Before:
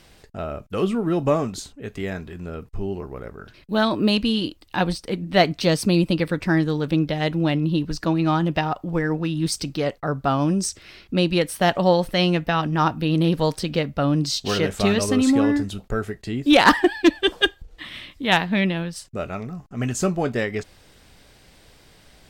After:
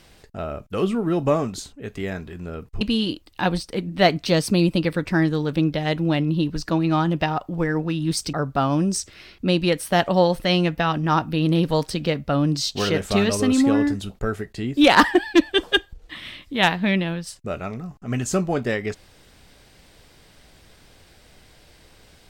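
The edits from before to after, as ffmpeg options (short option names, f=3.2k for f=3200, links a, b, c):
-filter_complex "[0:a]asplit=3[a][b][c];[a]atrim=end=2.812[d];[b]atrim=start=4.158:end=9.682[e];[c]atrim=start=10.018[f];[d][e]acrossfade=d=0.004:c1=hsin:c2=hsin[g];[g][f]acrossfade=d=0.004:c1=hsin:c2=hsin"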